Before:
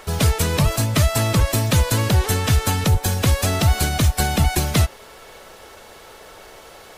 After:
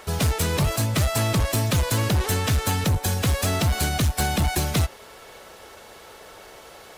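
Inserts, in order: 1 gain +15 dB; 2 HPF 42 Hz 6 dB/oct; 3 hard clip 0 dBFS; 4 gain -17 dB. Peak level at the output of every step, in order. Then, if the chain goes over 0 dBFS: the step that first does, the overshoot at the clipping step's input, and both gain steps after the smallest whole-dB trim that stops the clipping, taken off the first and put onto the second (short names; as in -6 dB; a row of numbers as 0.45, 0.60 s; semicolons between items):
+9.5, +9.5, 0.0, -17.0 dBFS; step 1, 9.5 dB; step 1 +5 dB, step 4 -7 dB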